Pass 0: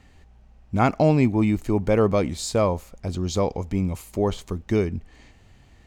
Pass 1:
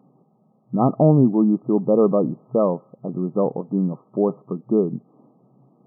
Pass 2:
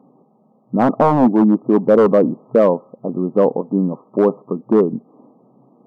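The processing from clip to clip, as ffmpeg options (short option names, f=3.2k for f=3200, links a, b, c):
-af "afftfilt=real='re*between(b*sr/4096,120,1300)':imag='im*between(b*sr/4096,120,1300)':win_size=4096:overlap=0.75,equalizer=f=1k:w=1.3:g=-6.5,volume=4.5dB"
-af "aeval=exprs='0.266*(abs(mod(val(0)/0.266+3,4)-2)-1)':c=same,equalizer=f=250:t=o:w=1:g=10,equalizer=f=500:t=o:w=1:g=9,equalizer=f=1k:t=o:w=1:g=11,volume=-5dB"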